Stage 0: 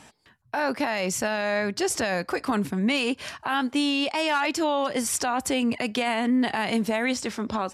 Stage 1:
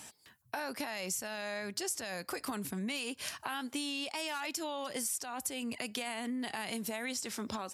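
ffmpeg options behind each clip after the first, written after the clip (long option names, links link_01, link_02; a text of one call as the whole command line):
ffmpeg -i in.wav -af "highpass=55,aemphasis=mode=production:type=75fm,acompressor=threshold=-30dB:ratio=6,volume=-5dB" out.wav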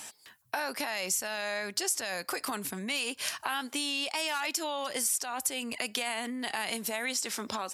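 ffmpeg -i in.wav -af "lowshelf=frequency=290:gain=-12,volume=6.5dB" out.wav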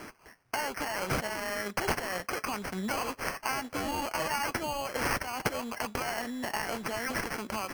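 ffmpeg -i in.wav -filter_complex "[0:a]asplit=2[link_01][link_02];[link_02]acrusher=bits=2:mode=log:mix=0:aa=0.000001,volume=-3.5dB[link_03];[link_01][link_03]amix=inputs=2:normalize=0,flanger=delay=4.5:depth=1.4:regen=70:speed=1.7:shape=sinusoidal,acrusher=samples=12:mix=1:aa=0.000001" out.wav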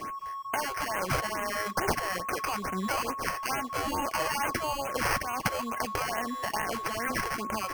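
ffmpeg -i in.wav -filter_complex "[0:a]aeval=exprs='val(0)+0.0158*sin(2*PI*1100*n/s)':channel_layout=same,asplit=2[link_01][link_02];[link_02]aeval=exprs='val(0)*gte(abs(val(0)),0.00794)':channel_layout=same,volume=-11.5dB[link_03];[link_01][link_03]amix=inputs=2:normalize=0,afftfilt=real='re*(1-between(b*sr/1024,200*pow(4500/200,0.5+0.5*sin(2*PI*2.3*pts/sr))/1.41,200*pow(4500/200,0.5+0.5*sin(2*PI*2.3*pts/sr))*1.41))':imag='im*(1-between(b*sr/1024,200*pow(4500/200,0.5+0.5*sin(2*PI*2.3*pts/sr))/1.41,200*pow(4500/200,0.5+0.5*sin(2*PI*2.3*pts/sr))*1.41))':win_size=1024:overlap=0.75" out.wav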